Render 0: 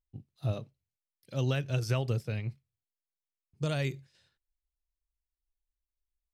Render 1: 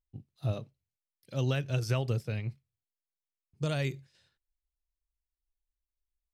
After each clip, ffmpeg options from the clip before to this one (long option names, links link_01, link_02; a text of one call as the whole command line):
ffmpeg -i in.wav -af anull out.wav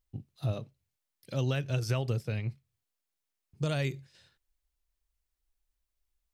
ffmpeg -i in.wav -af "acompressor=threshold=-45dB:ratio=1.5,volume=6.5dB" out.wav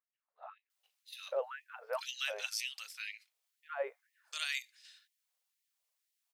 ffmpeg -i in.wav -filter_complex "[0:a]acrossover=split=1500[link_01][link_02];[link_02]adelay=700[link_03];[link_01][link_03]amix=inputs=2:normalize=0,afftfilt=real='re*gte(b*sr/1024,410*pow(1800/410,0.5+0.5*sin(2*PI*2*pts/sr)))':imag='im*gte(b*sr/1024,410*pow(1800/410,0.5+0.5*sin(2*PI*2*pts/sr)))':win_size=1024:overlap=0.75,volume=4.5dB" out.wav